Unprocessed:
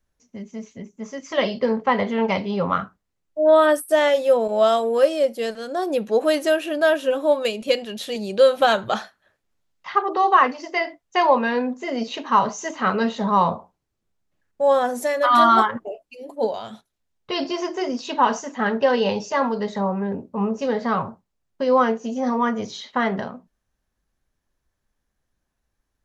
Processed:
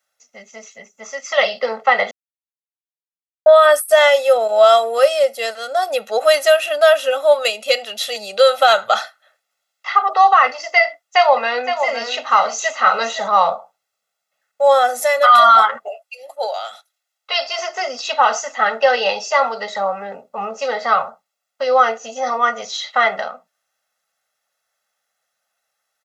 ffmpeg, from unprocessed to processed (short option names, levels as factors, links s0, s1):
-filter_complex "[0:a]asettb=1/sr,asplit=3[s0][s1][s2];[s0]atrim=end=10.854[s3];[s1]atrim=start=10.85:end=13.28,asetpts=PTS-STARTPTS,afade=t=in:d=0.004:c=qsin,afade=t=out:st=2.426:d=0.004:c=qsin,aecho=1:1:515:0.355,atrim=end_sample=107163[s4];[s2]atrim=start=13.276[s5];[s3][s4]acrossfade=d=0.004:c1=hsin:c2=qsin[s6];[s6][s5]acrossfade=d=0.004:c1=qsin:c2=hsin,asettb=1/sr,asplit=3[s7][s8][s9];[s7]atrim=end=15.884[s10];[s8]atrim=start=15.88:end=17.59,asetpts=PTS-STARTPTS,afade=t=in:d=0.004:c=qsin,afade=t=out:st=1.706:d=0.004:c=qsin,highpass=580[s11];[s9]atrim=start=17.586[s12];[s10][s11]acrossfade=d=0.004:c1=hsin:c2=qsin[s13];[s13][s12]acrossfade=d=0.004:c1=qsin:c2=hsin,asplit=3[s14][s15][s16];[s14]atrim=end=2.11,asetpts=PTS-STARTPTS,afade=t=out:st=2.106:d=0.004:c=hsin[s17];[s15]atrim=start=2.11:end=3.46,asetpts=PTS-STARTPTS,volume=0[s18];[s16]atrim=start=3.46,asetpts=PTS-STARTPTS,afade=t=in:d=0.004:c=hsin[s19];[s17][s18][s19]concat=n=3:v=0:a=1,highpass=780,aecho=1:1:1.5:0.92,alimiter=level_in=2.51:limit=0.891:release=50:level=0:latency=1,volume=0.891"